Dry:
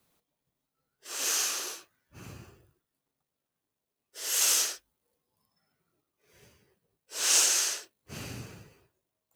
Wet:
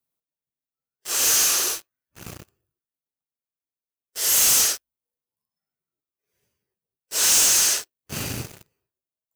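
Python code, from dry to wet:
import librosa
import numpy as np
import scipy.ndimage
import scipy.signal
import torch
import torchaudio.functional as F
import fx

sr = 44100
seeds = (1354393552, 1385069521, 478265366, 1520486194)

y = fx.high_shelf(x, sr, hz=9100.0, db=11.0)
y = fx.leveller(y, sr, passes=5)
y = y * 10.0 ** (-7.5 / 20.0)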